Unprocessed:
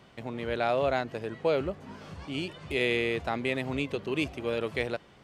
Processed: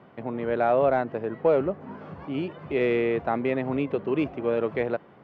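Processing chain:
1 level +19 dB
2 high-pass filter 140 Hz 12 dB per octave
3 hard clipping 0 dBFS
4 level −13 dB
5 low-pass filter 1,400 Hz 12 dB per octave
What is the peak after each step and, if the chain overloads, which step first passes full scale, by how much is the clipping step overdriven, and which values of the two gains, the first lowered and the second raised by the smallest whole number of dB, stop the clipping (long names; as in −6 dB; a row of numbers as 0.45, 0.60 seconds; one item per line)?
+5.5, +4.5, 0.0, −13.0, −12.5 dBFS
step 1, 4.5 dB
step 1 +14 dB, step 4 −8 dB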